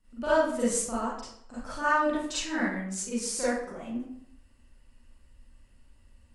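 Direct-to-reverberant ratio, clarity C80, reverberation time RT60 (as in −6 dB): −11.5 dB, 3.5 dB, 0.65 s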